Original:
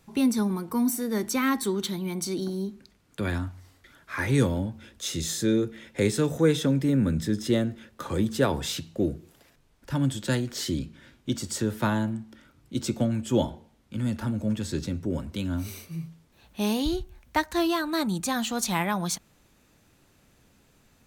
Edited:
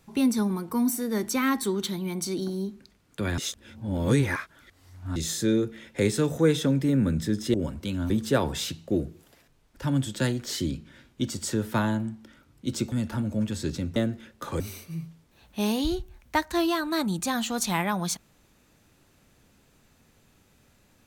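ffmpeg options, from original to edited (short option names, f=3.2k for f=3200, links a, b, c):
-filter_complex "[0:a]asplit=8[a][b][c][d][e][f][g][h];[a]atrim=end=3.382[i];[b]atrim=start=3.378:end=5.162,asetpts=PTS-STARTPTS,areverse[j];[c]atrim=start=5.158:end=7.542[k];[d]atrim=start=15.048:end=15.612[l];[e]atrim=start=8.178:end=13.002[m];[f]atrim=start=14.008:end=15.052[n];[g]atrim=start=7.538:end=8.182[o];[h]atrim=start=15.608[p];[i][j]acrossfade=d=0.004:c1=hsin:c2=hsin[q];[q][k]acrossfade=d=0.004:c1=hsin:c2=hsin[r];[r][l]acrossfade=d=0.004:c1=hsin:c2=hsin[s];[s][m]acrossfade=d=0.004:c1=hsin:c2=hsin[t];[t][n]acrossfade=d=0.004:c1=hsin:c2=hsin[u];[u][o]acrossfade=d=0.004:c1=hsin:c2=hsin[v];[v][p]acrossfade=d=0.004:c1=hsin:c2=hsin"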